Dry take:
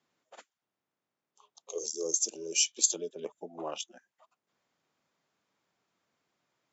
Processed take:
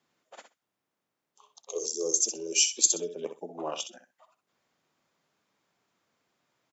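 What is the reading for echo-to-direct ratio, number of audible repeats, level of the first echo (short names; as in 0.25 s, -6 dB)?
-9.5 dB, 2, -9.5 dB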